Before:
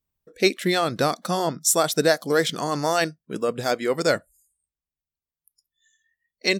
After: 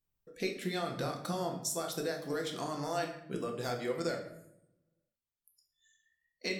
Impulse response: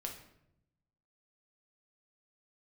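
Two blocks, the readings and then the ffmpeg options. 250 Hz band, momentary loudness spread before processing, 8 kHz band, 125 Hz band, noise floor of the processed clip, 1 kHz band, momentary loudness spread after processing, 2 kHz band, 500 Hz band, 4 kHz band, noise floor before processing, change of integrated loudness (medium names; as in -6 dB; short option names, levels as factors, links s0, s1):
-11.5 dB, 7 LU, -15.0 dB, -10.0 dB, under -85 dBFS, -13.5 dB, 4 LU, -15.0 dB, -13.5 dB, -14.5 dB, under -85 dBFS, -13.5 dB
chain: -filter_complex "[0:a]acompressor=threshold=0.0355:ratio=6[s0];[1:a]atrim=start_sample=2205[s1];[s0][s1]afir=irnorm=-1:irlink=0,volume=0.75"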